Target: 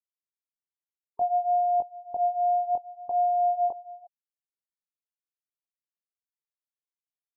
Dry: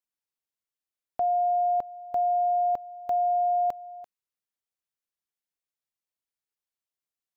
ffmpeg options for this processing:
-af "flanger=delay=18:depth=5.8:speed=0.6,afftfilt=real='re*gte(hypot(re,im),0.01)':imag='im*gte(hypot(re,im),0.01)':win_size=1024:overlap=0.75,volume=2dB"

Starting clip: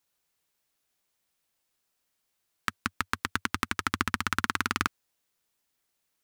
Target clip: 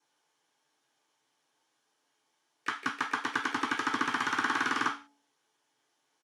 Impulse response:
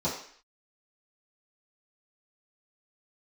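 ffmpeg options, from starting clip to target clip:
-filter_complex "[0:a]highpass=190,equalizer=f=230:t=q:w=4:g=-7,equalizer=f=570:t=q:w=4:g=-3,equalizer=f=840:t=q:w=4:g=6,equalizer=f=3.2k:t=q:w=4:g=10,equalizer=f=5.6k:t=q:w=4:g=7,equalizer=f=8.1k:t=q:w=4:g=-9,lowpass=f=9.8k:w=0.5412,lowpass=f=9.8k:w=1.3066,alimiter=limit=-12dB:level=0:latency=1:release=109,bandreject=f=285.4:t=h:w=4,bandreject=f=570.8:t=h:w=4,bandreject=f=856.2:t=h:w=4[a];[1:a]atrim=start_sample=2205,asetrate=74970,aresample=44100[b];[a][b]afir=irnorm=-1:irlink=0,asplit=3[c][d][e];[d]asetrate=35002,aresample=44100,atempo=1.25992,volume=-16dB[f];[e]asetrate=66075,aresample=44100,atempo=0.66742,volume=-17dB[g];[c][f][g]amix=inputs=3:normalize=0"

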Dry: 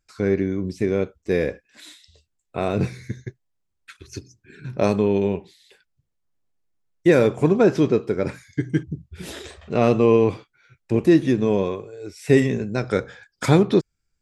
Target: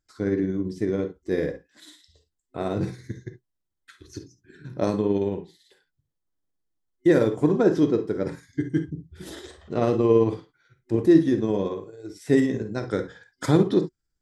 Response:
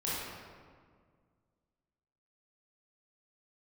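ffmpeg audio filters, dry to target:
-filter_complex "[0:a]asplit=2[a][b];[1:a]atrim=start_sample=2205,atrim=end_sample=3528[c];[b][c]afir=irnorm=-1:irlink=0,volume=-7.5dB[d];[a][d]amix=inputs=2:normalize=0,tremolo=f=18:d=0.3,superequalizer=6b=1.78:12b=0.398,volume=-6.5dB"

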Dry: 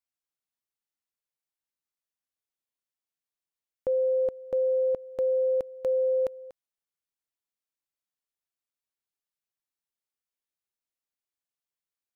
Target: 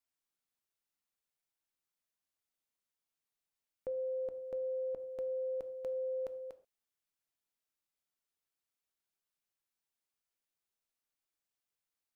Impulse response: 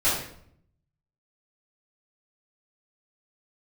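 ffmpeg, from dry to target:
-filter_complex "[0:a]alimiter=level_in=8.5dB:limit=-24dB:level=0:latency=1,volume=-8.5dB,asplit=2[a][b];[1:a]atrim=start_sample=2205,atrim=end_sample=6174[c];[b][c]afir=irnorm=-1:irlink=0,volume=-25dB[d];[a][d]amix=inputs=2:normalize=0"

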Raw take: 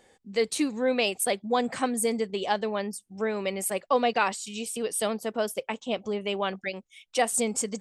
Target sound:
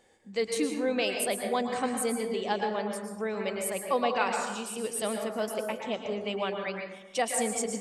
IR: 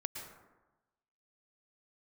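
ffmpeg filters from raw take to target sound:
-filter_complex "[1:a]atrim=start_sample=2205[a];[0:a][a]afir=irnorm=-1:irlink=0,volume=-2dB"

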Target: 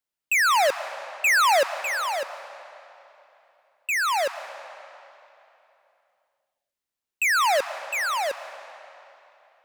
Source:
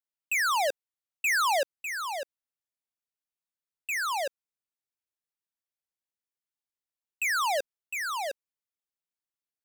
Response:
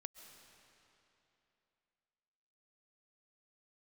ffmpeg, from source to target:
-filter_complex "[0:a]asplit=2[a][b];[1:a]atrim=start_sample=2205,highshelf=f=5.9k:g=-6.5[c];[b][c]afir=irnorm=-1:irlink=0,volume=7dB[d];[a][d]amix=inputs=2:normalize=0"

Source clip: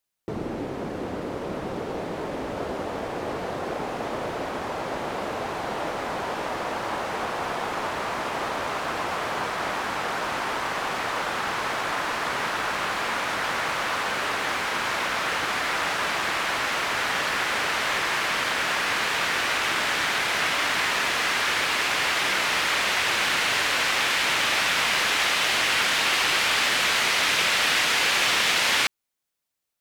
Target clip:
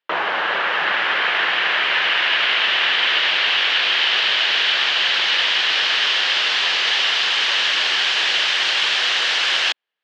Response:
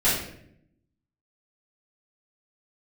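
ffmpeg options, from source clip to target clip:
-af "asetrate=130977,aresample=44100,highpass=260,equalizer=f=260:t=q:w=4:g=-9,equalizer=f=1.7k:t=q:w=4:g=6,equalizer=f=3k:t=q:w=4:g=7,lowpass=f=3.8k:w=0.5412,lowpass=f=3.8k:w=1.3066,volume=8.5dB"

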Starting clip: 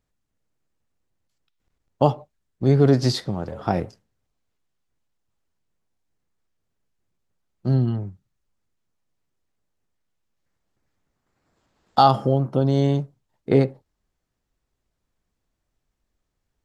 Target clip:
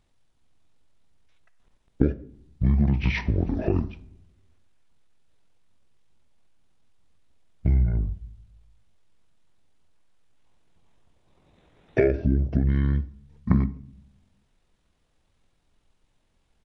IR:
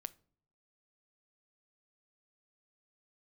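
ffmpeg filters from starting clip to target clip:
-filter_complex "[0:a]acompressor=threshold=-29dB:ratio=5,asetrate=22050,aresample=44100,atempo=2,asplit=2[a][b];[1:a]atrim=start_sample=2205,asetrate=24696,aresample=44100[c];[b][c]afir=irnorm=-1:irlink=0,volume=7.5dB[d];[a][d]amix=inputs=2:normalize=0"

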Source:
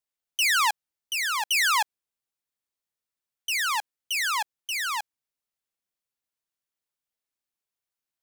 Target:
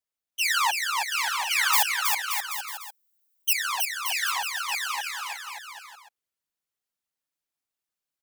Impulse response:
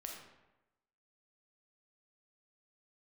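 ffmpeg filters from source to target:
-filter_complex "[0:a]asettb=1/sr,asplit=3[a][b][c];[a]atrim=end=1.734[d];[b]atrim=start=1.73:end=3.53,asetpts=PTS-STARTPTS,afade=t=in:d=0.004:c=qsin,afade=t=out:st=1.796:d=0.004:c=qsin,aemphasis=mode=production:type=bsi[e];[c]atrim=start=3.526[f];[d][e]acrossfade=d=0.004:c1=hsin:c2=qsin[g];[g][f]acrossfade=d=0.004:c1=qsin:c2=hsin,afftfilt=real='hypot(re,im)*cos(2*PI*random(0))':imag='hypot(re,im)*sin(2*PI*random(1))':win_size=512:overlap=0.75,aecho=1:1:320|576|780.8|944.6|1076:0.631|0.398|0.251|0.158|0.1,volume=4dB"

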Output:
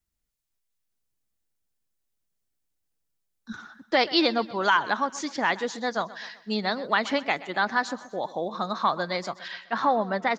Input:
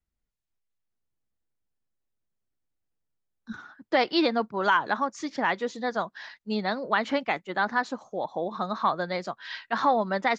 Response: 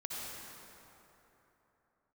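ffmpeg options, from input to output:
-af "asetnsamples=n=441:p=0,asendcmd='9.48 highshelf g -3',highshelf=f=3.5k:g=9.5,aecho=1:1:127|254|381|508:0.126|0.0617|0.0302|0.0148"

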